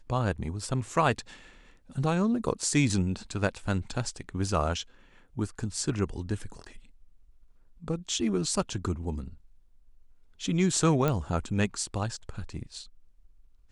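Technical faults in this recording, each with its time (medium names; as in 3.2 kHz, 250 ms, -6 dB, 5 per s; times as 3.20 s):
11.08 s: pop -14 dBFS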